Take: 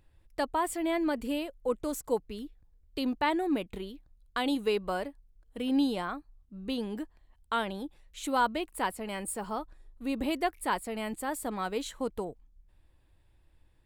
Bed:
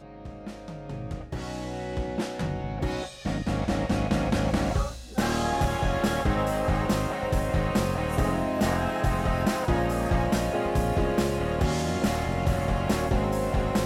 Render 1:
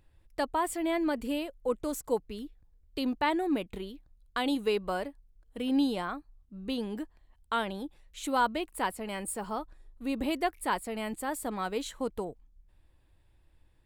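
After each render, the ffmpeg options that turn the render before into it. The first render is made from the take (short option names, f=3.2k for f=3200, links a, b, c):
-af anull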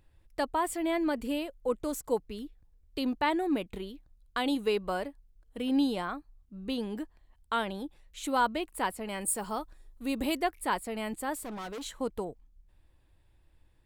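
-filter_complex "[0:a]asettb=1/sr,asplit=3[a][b][c];[a]atrim=end=9.214[d];[b]atrim=start=9.21:end=10.4,asetpts=PTS-STARTPTS,afade=t=in:d=0.004:c=qsin,afade=t=out:st=1.186:d=0.004:c=qsin,highshelf=f=4.2k:g=8[e];[c]atrim=start=10.396[f];[d][e]acrossfade=d=0.004:c1=hsin:c2=qsin[g];[g][f]acrossfade=d=0.004:c1=qsin:c2=hsin,asettb=1/sr,asplit=3[h][i][j];[h]atrim=end=11.364[k];[i]atrim=start=11.36:end=11.85,asetpts=PTS-STARTPTS,afade=t=in:d=0.004:c=qsin,afade=t=out:st=0.486:d=0.004:c=qsin,asoftclip=type=hard:threshold=-37dB[l];[j]atrim=start=11.846[m];[k][l]acrossfade=d=0.004:c1=hsin:c2=qsin[n];[n][m]acrossfade=d=0.004:c1=qsin:c2=hsin"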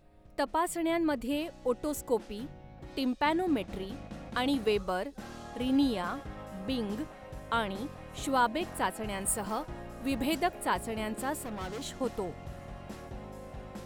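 -filter_complex "[1:a]volume=-18.5dB[a];[0:a][a]amix=inputs=2:normalize=0"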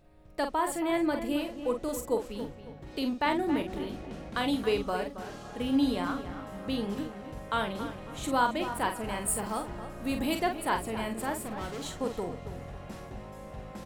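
-filter_complex "[0:a]asplit=2[a][b];[b]adelay=45,volume=-7dB[c];[a][c]amix=inputs=2:normalize=0,asplit=2[d][e];[e]adelay=274,lowpass=f=3.2k:p=1,volume=-11dB,asplit=2[f][g];[g]adelay=274,lowpass=f=3.2k:p=1,volume=0.35,asplit=2[h][i];[i]adelay=274,lowpass=f=3.2k:p=1,volume=0.35,asplit=2[j][k];[k]adelay=274,lowpass=f=3.2k:p=1,volume=0.35[l];[f][h][j][l]amix=inputs=4:normalize=0[m];[d][m]amix=inputs=2:normalize=0"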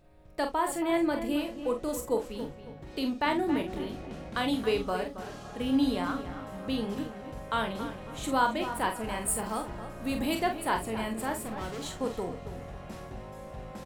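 -filter_complex "[0:a]asplit=2[a][b];[b]adelay=27,volume=-11.5dB[c];[a][c]amix=inputs=2:normalize=0"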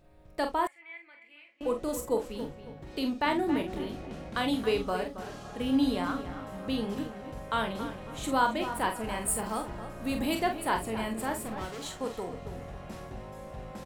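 -filter_complex "[0:a]asettb=1/sr,asplit=3[a][b][c];[a]atrim=end=0.674[d];[b]atrim=start=0.67:end=1.61,asetpts=PTS-STARTPTS,afade=t=in:d=0.004:c=qsin,afade=t=out:st=0.936:d=0.004:c=qsin,bandpass=f=2.2k:t=q:w=11[e];[c]atrim=start=1.606[f];[d][e]acrossfade=d=0.004:c1=hsin:c2=qsin[g];[g][f]acrossfade=d=0.004:c1=qsin:c2=hsin,asettb=1/sr,asplit=3[h][i][j];[h]atrim=end=11.654[k];[i]atrim=start=11.65:end=12.33,asetpts=PTS-STARTPTS,afade=t=in:d=0.004:c=qsin,afade=t=out:st=0.676:d=0.004:c=qsin,lowshelf=f=380:g=-5.5[l];[j]atrim=start=12.326[m];[k][l]acrossfade=d=0.004:c1=hsin:c2=qsin[n];[n][m]acrossfade=d=0.004:c1=qsin:c2=hsin"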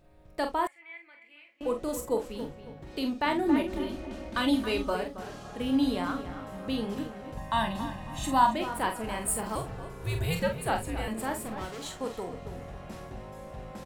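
-filter_complex "[0:a]asettb=1/sr,asplit=3[a][b][c];[a]atrim=end=3.454[d];[b]atrim=start=3.45:end=4.95,asetpts=PTS-STARTPTS,afade=t=in:d=0.004:c=qsin,afade=t=out:st=1.496:d=0.004:c=qsin,aecho=1:1:3.3:0.73,atrim=end_sample=66150[e];[c]atrim=start=4.946[f];[d][e]acrossfade=d=0.004:c1=hsin:c2=qsin[g];[g][f]acrossfade=d=0.004:c1=qsin:c2=hsin,asettb=1/sr,asplit=3[h][i][j];[h]atrim=end=7.374[k];[i]atrim=start=7.37:end=8.55,asetpts=PTS-STARTPTS,afade=t=in:d=0.004:c=qsin,afade=t=out:st=1.176:d=0.004:c=qsin,aecho=1:1:1.1:0.85,atrim=end_sample=52038[l];[j]atrim=start=8.546[m];[k][l]acrossfade=d=0.004:c1=hsin:c2=qsin[n];[n][m]acrossfade=d=0.004:c1=qsin:c2=hsin,asettb=1/sr,asplit=3[o][p][q];[o]atrim=end=9.554[r];[p]atrim=start=9.55:end=11.08,asetpts=PTS-STARTPTS,afade=t=in:d=0.004:c=qsin,afade=t=out:st=1.526:d=0.004:c=qsin,afreqshift=-160[s];[q]atrim=start=11.076[t];[r][s]acrossfade=d=0.004:c1=hsin:c2=qsin[u];[u][t]acrossfade=d=0.004:c1=qsin:c2=hsin"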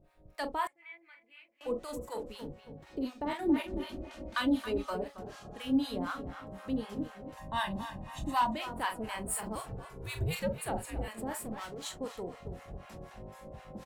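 -filter_complex "[0:a]asoftclip=type=tanh:threshold=-15dB,acrossover=split=730[a][b];[a]aeval=exprs='val(0)*(1-1/2+1/2*cos(2*PI*4*n/s))':c=same[c];[b]aeval=exprs='val(0)*(1-1/2-1/2*cos(2*PI*4*n/s))':c=same[d];[c][d]amix=inputs=2:normalize=0"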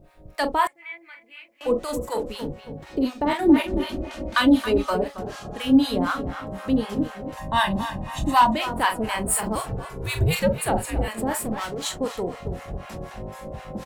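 -af "volume=12dB"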